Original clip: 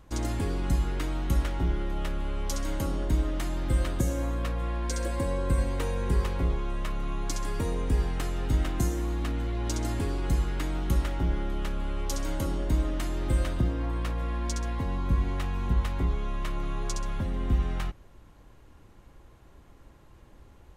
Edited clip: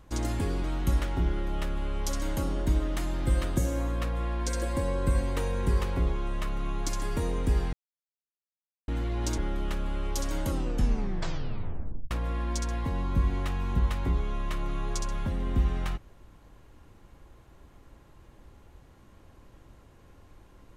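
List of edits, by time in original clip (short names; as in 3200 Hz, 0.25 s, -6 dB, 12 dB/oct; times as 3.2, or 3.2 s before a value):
0.64–1.07 cut
8.16–9.31 mute
9.81–11.32 cut
12.43 tape stop 1.62 s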